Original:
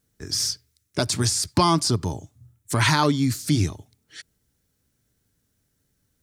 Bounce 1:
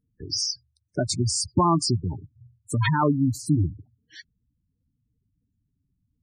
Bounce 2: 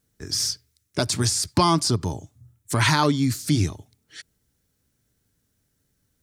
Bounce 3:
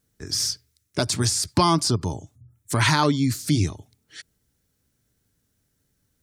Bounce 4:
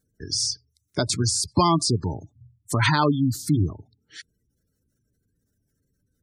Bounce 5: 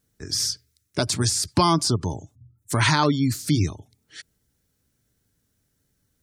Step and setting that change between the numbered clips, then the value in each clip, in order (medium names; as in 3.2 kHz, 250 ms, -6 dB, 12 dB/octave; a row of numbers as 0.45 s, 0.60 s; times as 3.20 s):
spectral gate, under each frame's peak: -10 dB, -60 dB, -45 dB, -20 dB, -35 dB